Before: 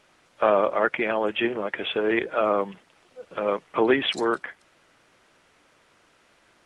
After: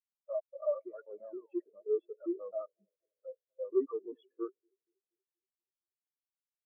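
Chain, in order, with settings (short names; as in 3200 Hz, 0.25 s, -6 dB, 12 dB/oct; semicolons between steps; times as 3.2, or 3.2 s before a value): slices in reverse order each 0.133 s, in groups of 2; tilt shelf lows +4 dB, about 830 Hz; on a send: band-limited delay 0.238 s, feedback 82%, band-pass 510 Hz, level -16 dB; on the sum: hard clip -21.5 dBFS, distortion -7 dB; painted sound fall, 0.78–1.74, 400–7800 Hz -39 dBFS; dynamic EQ 1200 Hz, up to +7 dB, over -45 dBFS, Q 2; spectral expander 4:1; gain -5.5 dB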